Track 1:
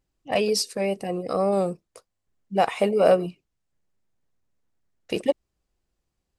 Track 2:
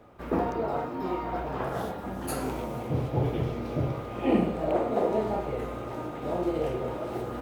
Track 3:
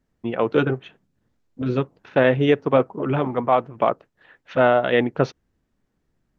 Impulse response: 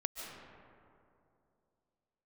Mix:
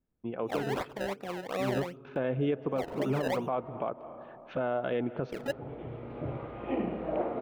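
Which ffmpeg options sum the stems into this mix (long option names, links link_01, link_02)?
-filter_complex "[0:a]acrusher=samples=27:mix=1:aa=0.000001:lfo=1:lforange=27:lforate=2.7,adelay=200,volume=-8dB[link_01];[1:a]lowpass=frequency=3400:width=0.5412,lowpass=frequency=3400:width=1.3066,adelay=2450,volume=-6.5dB,asplit=3[link_02][link_03][link_04];[link_02]atrim=end=3.7,asetpts=PTS-STARTPTS,afade=type=out:start_time=3.696:duration=0.004:curve=hsin[link_05];[link_03]atrim=start=3.7:end=5.46,asetpts=PTS-STARTPTS,volume=0[link_06];[link_04]atrim=start=5.46,asetpts=PTS-STARTPTS,afade=type=in:duration=0.004:curve=hsin[link_07];[link_05][link_06][link_07]concat=n=3:v=0:a=1,asplit=2[link_08][link_09];[link_09]volume=-10dB[link_10];[2:a]lowshelf=frequency=470:gain=8.5,bandreject=frequency=1900:width=7.9,volume=-8dB,afade=type=in:start_time=1.58:duration=0.53:silence=0.421697,asplit=3[link_11][link_12][link_13];[link_12]volume=-16.5dB[link_14];[link_13]apad=whole_len=435110[link_15];[link_08][link_15]sidechaincompress=threshold=-50dB:ratio=3:attack=5.8:release=484[link_16];[3:a]atrim=start_sample=2205[link_17];[link_10][link_14]amix=inputs=2:normalize=0[link_18];[link_18][link_17]afir=irnorm=-1:irlink=0[link_19];[link_01][link_16][link_11][link_19]amix=inputs=4:normalize=0,bass=frequency=250:gain=-4,treble=frequency=4000:gain=-10,alimiter=limit=-21dB:level=0:latency=1:release=222"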